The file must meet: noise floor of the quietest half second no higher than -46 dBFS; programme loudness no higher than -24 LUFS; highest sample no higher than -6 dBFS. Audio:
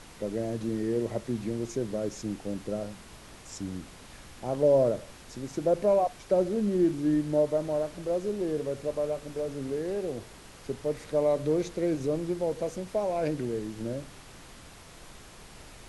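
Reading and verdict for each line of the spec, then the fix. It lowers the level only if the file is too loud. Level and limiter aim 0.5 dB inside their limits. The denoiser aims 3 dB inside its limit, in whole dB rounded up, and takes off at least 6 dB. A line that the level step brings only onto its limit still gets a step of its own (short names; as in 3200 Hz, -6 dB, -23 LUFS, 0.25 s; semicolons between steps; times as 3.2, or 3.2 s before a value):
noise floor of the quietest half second -49 dBFS: OK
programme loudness -29.5 LUFS: OK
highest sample -13.5 dBFS: OK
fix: none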